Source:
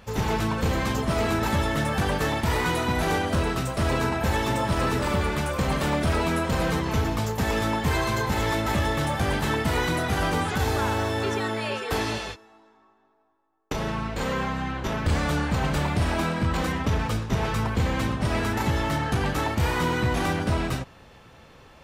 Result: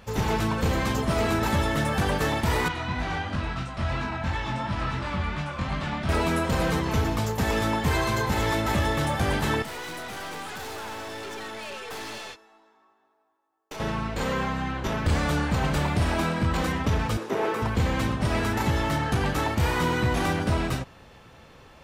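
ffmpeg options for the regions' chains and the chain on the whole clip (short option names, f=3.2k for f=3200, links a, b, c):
-filter_complex "[0:a]asettb=1/sr,asplit=3[a][b][c];[a]atrim=end=2.684[d];[b]atrim=start=2.68:end=6.09,asetpts=PTS-STARTPTS,afade=t=in:d=0.004:c=qsin,afade=t=out:st=3.406:d=0.004:c=qsin,lowpass=4.3k,equalizer=f=440:w=1.8:g=-12.5,flanger=delay=20:depth=3:speed=2.9[e];[c]atrim=start=6.086[f];[d][e]acrossfade=d=0.004:c1=hsin:c2=qsin[g];[g][f]acrossfade=d=0.004:c1=qsin:c2=hsin,asettb=1/sr,asplit=3[h][i][j];[h]atrim=end=9.624[k];[i]atrim=start=9.62:end=13.8,asetpts=PTS-STARTPTS,afade=t=in:d=0.004:c=qsin,afade=t=out:st=4.176:d=0.004:c=qsin,highpass=f=440:p=1,aeval=exprs='(tanh(50.1*val(0)+0.35)-tanh(0.35))/50.1':c=same[l];[j]atrim=start=13.796[m];[k][l]acrossfade=d=0.004:c1=hsin:c2=qsin[n];[n][m]acrossfade=d=0.004:c1=qsin:c2=hsin,asettb=1/sr,asplit=3[o][p][q];[o]atrim=end=17.174[r];[p]atrim=start=17.17:end=17.62,asetpts=PTS-STARTPTS,afade=t=in:d=0.004:c=qsin,afade=t=out:st=0.446:d=0.004:c=qsin,acrossover=split=2600[s][t];[t]acompressor=threshold=-52dB:ratio=4:attack=1:release=60[u];[s][u]amix=inputs=2:normalize=0,highpass=f=370:t=q:w=2.3,highshelf=f=6.7k:g=11[v];[q]atrim=start=17.616[w];[r][v]acrossfade=d=0.004:c1=hsin:c2=qsin[x];[x][w]acrossfade=d=0.004:c1=qsin:c2=hsin"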